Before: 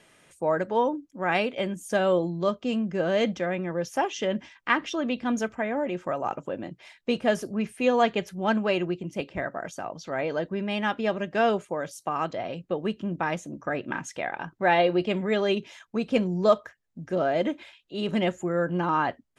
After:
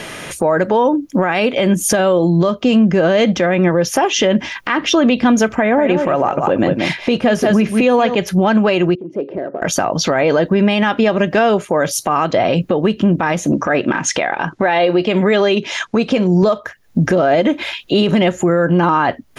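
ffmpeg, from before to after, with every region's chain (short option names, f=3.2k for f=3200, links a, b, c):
-filter_complex "[0:a]asettb=1/sr,asplit=3[a][b][c];[a]atrim=end=5.594[d];[b]atrim=start=5.59:end=8.15,asetpts=PTS-STARTPTS,afade=t=in:d=0.004:c=qsin,afade=t=out:st=2.556:d=0.004:c=qsin,highshelf=f=9.3k:g=-8.5,aecho=1:1:183:0.299,atrim=end_sample=112896[e];[c]atrim=start=8.146[f];[d][e]acrossfade=d=0.004:c1=hsin:c2=qsin[g];[g][f]acrossfade=d=0.004:c1=qsin:c2=hsin,asettb=1/sr,asplit=3[h][i][j];[h]atrim=end=8.954[k];[i]atrim=start=8.95:end=9.62,asetpts=PTS-STARTPTS,afade=t=in:d=0.004:c=qsin,afade=t=out:st=0.666:d=0.004:c=qsin,acompressor=threshold=-44dB:ratio=2.5:attack=3.2:release=140:knee=1:detection=peak,asoftclip=type=hard:threshold=-36.5dB,bandpass=f=400:t=q:w=2.7[l];[j]atrim=start=9.616[m];[k][l]acrossfade=d=0.004:c1=hsin:c2=qsin[n];[n][m]acrossfade=d=0.004:c1=qsin:c2=hsin,asettb=1/sr,asplit=3[o][p][q];[o]atrim=end=13.524[r];[p]atrim=start=13.52:end=16.43,asetpts=PTS-STARTPTS,afade=t=in:d=0.004:c=qsin,afade=t=out:st=2.906:d=0.004:c=qsin,lowpass=f=8.7k:w=0.5412,lowpass=f=8.7k:w=1.3066,lowshelf=f=140:g=-9.5[s];[q]atrim=start=16.426[t];[r][s]acrossfade=d=0.004:c1=hsin:c2=qsin[u];[u][t]acrossfade=d=0.004:c1=qsin:c2=hsin,equalizer=f=8k:w=5.8:g=-9.5,acompressor=threshold=-38dB:ratio=5,alimiter=level_in=33dB:limit=-1dB:release=50:level=0:latency=1,volume=-4dB"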